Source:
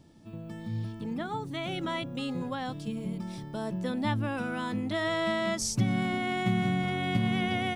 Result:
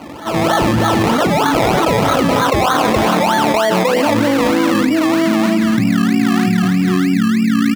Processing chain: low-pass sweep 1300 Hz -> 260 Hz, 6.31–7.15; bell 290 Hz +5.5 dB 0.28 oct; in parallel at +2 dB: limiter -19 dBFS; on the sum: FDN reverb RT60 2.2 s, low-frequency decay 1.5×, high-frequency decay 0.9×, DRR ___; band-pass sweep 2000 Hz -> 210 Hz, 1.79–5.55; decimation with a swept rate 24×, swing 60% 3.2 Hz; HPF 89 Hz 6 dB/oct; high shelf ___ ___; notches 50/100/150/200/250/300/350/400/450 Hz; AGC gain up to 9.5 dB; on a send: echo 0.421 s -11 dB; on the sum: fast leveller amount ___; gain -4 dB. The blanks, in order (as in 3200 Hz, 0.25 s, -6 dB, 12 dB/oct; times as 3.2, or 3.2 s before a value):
12 dB, 5000 Hz, -9 dB, 100%